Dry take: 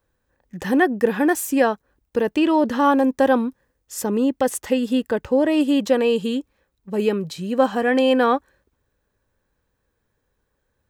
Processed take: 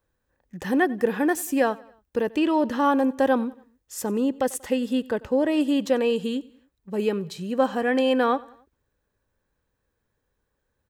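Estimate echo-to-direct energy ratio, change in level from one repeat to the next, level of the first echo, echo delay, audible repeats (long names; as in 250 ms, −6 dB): −21.5 dB, −6.5 dB, −22.5 dB, 93 ms, 2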